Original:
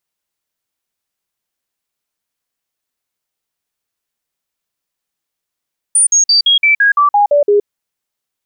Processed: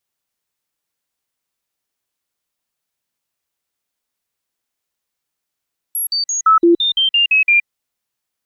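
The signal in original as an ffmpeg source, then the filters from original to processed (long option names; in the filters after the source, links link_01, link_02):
-f lavfi -i "aevalsrc='0.473*clip(min(mod(t,0.17),0.12-mod(t,0.17))/0.005,0,1)*sin(2*PI*9290*pow(2,-floor(t/0.17)/2)*mod(t,0.17))':duration=1.7:sample_rate=44100"
-filter_complex "[0:a]afftfilt=real='real(if(lt(b,920),b+92*(1-2*mod(floor(b/92),2)),b),0)':imag='imag(if(lt(b,920),b+92*(1-2*mod(floor(b/92),2)),b),0)':win_size=2048:overlap=0.75,acrossover=split=2600[link_01][link_02];[link_02]acompressor=threshold=-21dB:ratio=4:attack=1:release=60[link_03];[link_01][link_03]amix=inputs=2:normalize=0"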